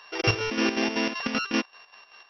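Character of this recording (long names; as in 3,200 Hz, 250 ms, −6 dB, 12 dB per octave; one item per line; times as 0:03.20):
a buzz of ramps at a fixed pitch in blocks of 16 samples
chopped level 5.2 Hz, depth 60%, duty 60%
MP2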